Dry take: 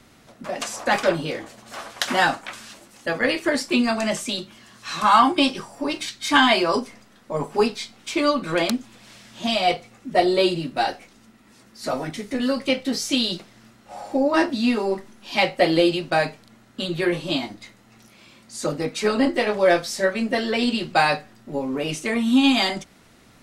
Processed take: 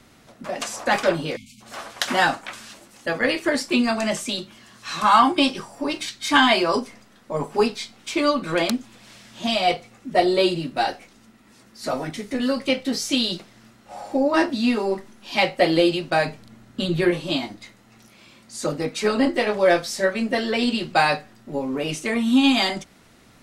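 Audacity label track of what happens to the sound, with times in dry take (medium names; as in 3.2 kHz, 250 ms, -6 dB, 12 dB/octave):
1.360000	1.610000	spectral selection erased 270–2100 Hz
16.270000	17.110000	bass shelf 240 Hz +9 dB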